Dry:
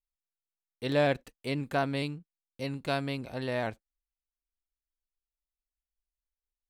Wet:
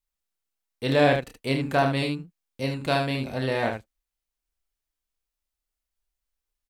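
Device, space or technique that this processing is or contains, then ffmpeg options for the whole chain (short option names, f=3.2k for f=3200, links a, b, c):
slapback doubling: -filter_complex "[0:a]asplit=3[a][b][c];[b]adelay=30,volume=-5.5dB[d];[c]adelay=75,volume=-6.5dB[e];[a][d][e]amix=inputs=3:normalize=0,volume=5.5dB"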